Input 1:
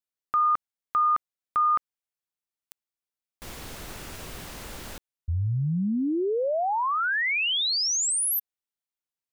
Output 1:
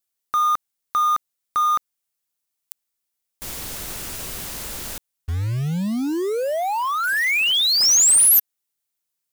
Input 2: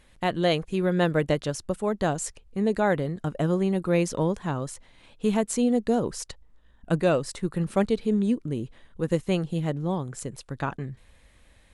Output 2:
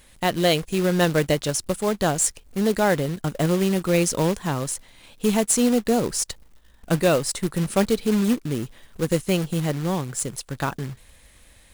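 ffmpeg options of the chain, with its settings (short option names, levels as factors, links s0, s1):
-filter_complex "[0:a]highshelf=f=4800:g=11.5,asplit=2[s0][s1];[s1]asoftclip=type=tanh:threshold=0.168,volume=0.447[s2];[s0][s2]amix=inputs=2:normalize=0,acrusher=bits=3:mode=log:mix=0:aa=0.000001"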